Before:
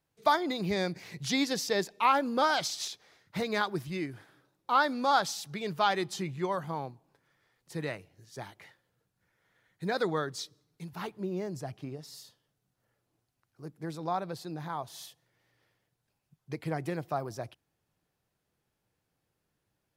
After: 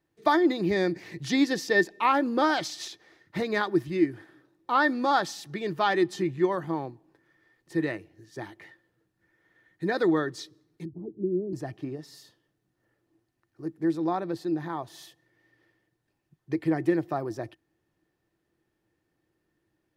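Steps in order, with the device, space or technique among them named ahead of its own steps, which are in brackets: 10.85–11.53 s: inverse Chebyshev low-pass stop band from 1.9 kHz, stop band 70 dB; inside a helmet (treble shelf 4.9 kHz -7 dB; small resonant body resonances 330/1800 Hz, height 15 dB, ringing for 65 ms); trim +1.5 dB

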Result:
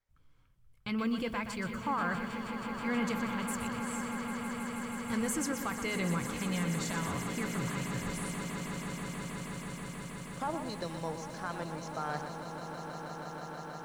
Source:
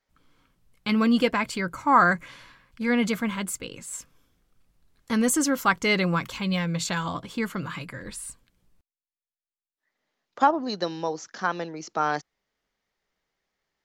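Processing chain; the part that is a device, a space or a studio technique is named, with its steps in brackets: car stereo with a boomy subwoofer (resonant low shelf 160 Hz +9.5 dB, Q 1.5; peak limiter -16.5 dBFS, peak gain reduction 10 dB); peaking EQ 4.2 kHz -3 dB; echo with a slow build-up 160 ms, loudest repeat 8, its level -12.5 dB; bit-crushed delay 122 ms, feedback 35%, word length 8-bit, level -8.5 dB; trim -9 dB

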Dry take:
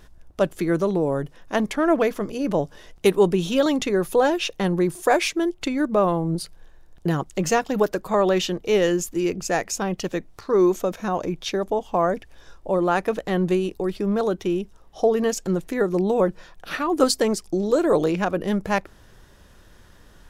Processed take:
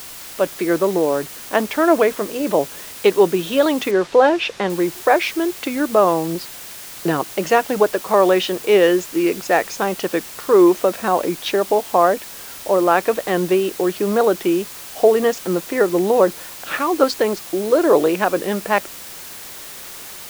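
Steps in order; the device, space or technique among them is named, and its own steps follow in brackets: dictaphone (band-pass 310–3500 Hz; level rider gain up to 9 dB; wow and flutter; white noise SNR 17 dB); 3.91–4.70 s: low-pass 5.4 kHz 12 dB/octave

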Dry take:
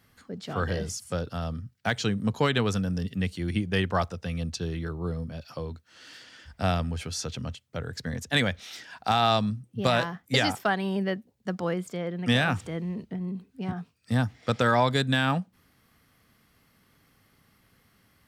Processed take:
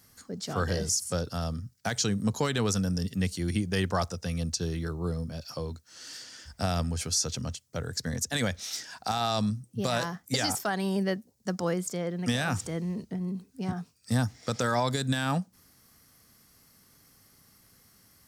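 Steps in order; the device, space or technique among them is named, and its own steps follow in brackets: over-bright horn tweeter (resonant high shelf 4.2 kHz +9.5 dB, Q 1.5; peak limiter -17 dBFS, peak gain reduction 9.5 dB)

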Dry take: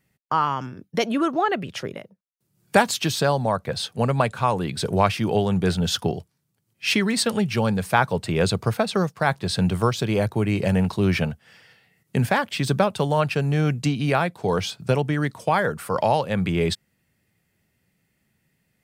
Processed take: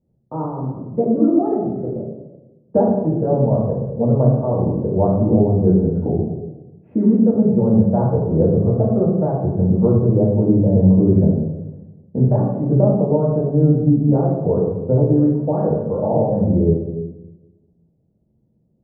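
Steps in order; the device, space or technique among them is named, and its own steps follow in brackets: next room (low-pass 590 Hz 24 dB/octave; reverberation RT60 1.1 s, pre-delay 3 ms, DRR -6.5 dB); low-pass 2.5 kHz 12 dB/octave

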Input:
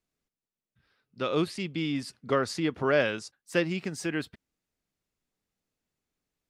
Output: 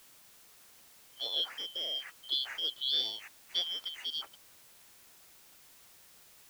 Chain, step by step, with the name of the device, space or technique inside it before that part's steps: split-band scrambled radio (four frequency bands reordered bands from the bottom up 3412; band-pass 400–3200 Hz; white noise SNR 19 dB); trim -3.5 dB

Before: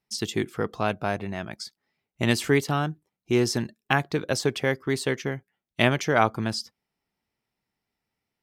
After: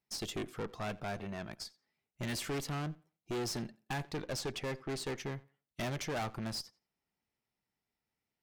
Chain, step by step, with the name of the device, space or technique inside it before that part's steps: 4.25–5.18 s: low-pass 8.6 kHz; rockabilly slapback (valve stage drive 29 dB, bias 0.5; tape echo 86 ms, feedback 22%, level -20.5 dB, low-pass 4.9 kHz); trim -4.5 dB

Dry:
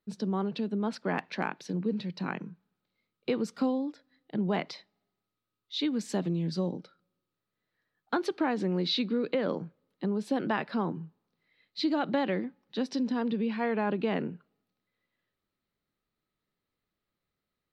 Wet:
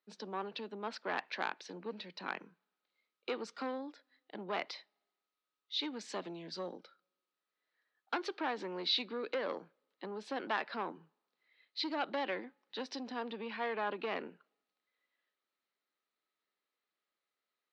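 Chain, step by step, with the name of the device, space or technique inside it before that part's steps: frequency weighting A; public-address speaker with an overloaded transformer (transformer saturation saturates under 1.5 kHz; band-pass 250–5900 Hz); trim -2 dB

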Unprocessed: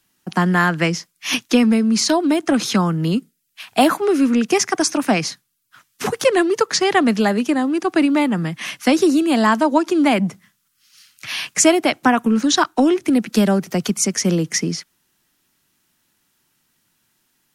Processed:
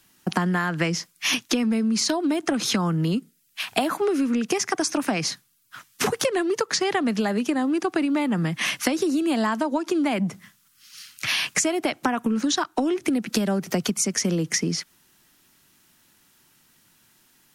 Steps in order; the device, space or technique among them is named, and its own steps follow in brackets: serial compression, leveller first (compression 2:1, threshold -17 dBFS, peak gain reduction 5.5 dB; compression 6:1, threshold -27 dBFS, peak gain reduction 13 dB); trim +6 dB

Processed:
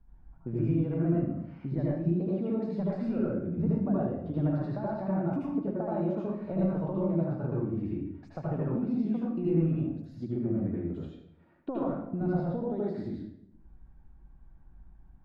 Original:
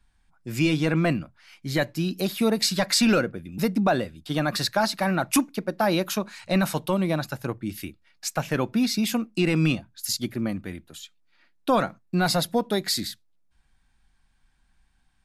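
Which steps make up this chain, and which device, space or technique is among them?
television next door (compression 5:1, threshold -38 dBFS, peak gain reduction 19 dB; low-pass 600 Hz 12 dB/octave; reverberation RT60 0.85 s, pre-delay 71 ms, DRR -6.5 dB); trim +4 dB

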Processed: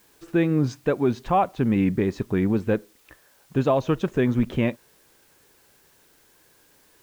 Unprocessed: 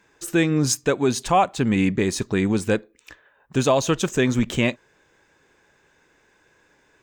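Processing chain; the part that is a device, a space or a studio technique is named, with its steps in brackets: cassette deck with a dirty head (tape spacing loss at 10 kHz 35 dB; wow and flutter; white noise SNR 35 dB)

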